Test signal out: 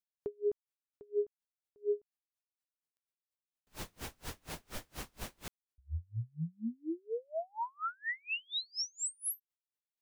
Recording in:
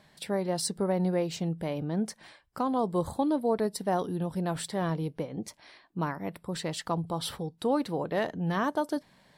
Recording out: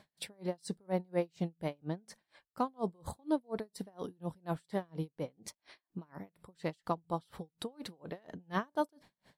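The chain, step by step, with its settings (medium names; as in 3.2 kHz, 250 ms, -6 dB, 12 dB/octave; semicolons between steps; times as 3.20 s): logarithmic tremolo 4.2 Hz, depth 37 dB; trim -1 dB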